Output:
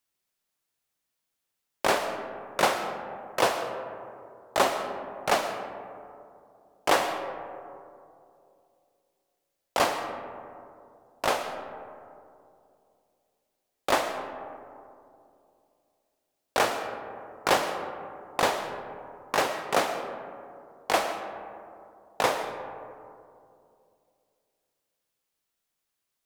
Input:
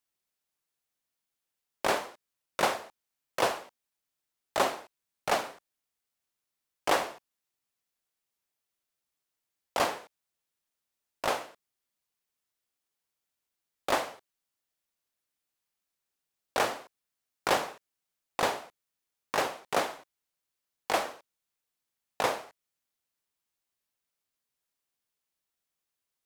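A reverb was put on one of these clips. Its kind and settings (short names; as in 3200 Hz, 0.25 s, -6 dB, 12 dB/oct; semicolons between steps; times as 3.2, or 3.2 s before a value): digital reverb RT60 2.6 s, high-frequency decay 0.3×, pre-delay 75 ms, DRR 8 dB; gain +3.5 dB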